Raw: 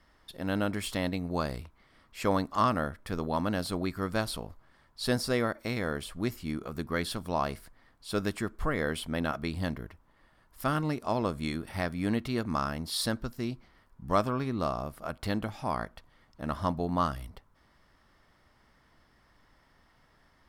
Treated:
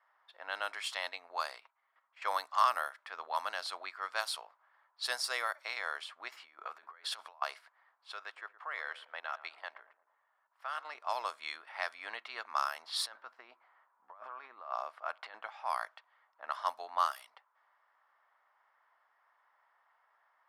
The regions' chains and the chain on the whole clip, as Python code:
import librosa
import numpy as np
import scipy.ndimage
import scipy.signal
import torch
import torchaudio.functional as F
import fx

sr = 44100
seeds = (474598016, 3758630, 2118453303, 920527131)

y = fx.chain(x, sr, fx.high_shelf(hz=9400.0, db=-4.0),
    fx.level_steps(step_db=12),
    fx.comb(ms=7.4, depth=0.43), at=(1.6, 2.22))
y = fx.chain(y, sr, fx.over_compress(threshold_db=-38.0, ratio=-0.5),
    fx.low_shelf_res(hz=120.0, db=8.0, q=3.0), at=(6.32, 7.42))
y = fx.chain(y, sr, fx.highpass(hz=340.0, slope=12),
    fx.level_steps(step_db=12),
    fx.echo_filtered(ms=115, feedback_pct=52, hz=1300.0, wet_db=-14.0), at=(8.12, 10.95))
y = fx.chain(y, sr, fx.high_shelf(hz=3700.0, db=-10.5),
    fx.over_compress(threshold_db=-34.0, ratio=-0.5), at=(12.82, 15.34))
y = scipy.signal.sosfilt(scipy.signal.butter(4, 800.0, 'highpass', fs=sr, output='sos'), y)
y = fx.env_lowpass(y, sr, base_hz=1300.0, full_db=-29.5)
y = fx.high_shelf(y, sr, hz=12000.0, db=10.5)